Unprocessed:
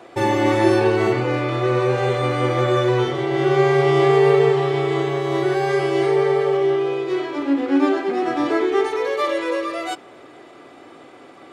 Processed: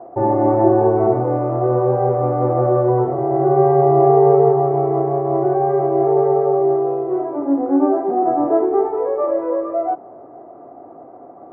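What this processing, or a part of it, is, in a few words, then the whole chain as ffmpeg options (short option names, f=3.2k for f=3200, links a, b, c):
under water: -af "lowpass=f=1k:w=0.5412,lowpass=f=1k:w=1.3066,equalizer=f=690:t=o:w=0.32:g=11,volume=1.5dB"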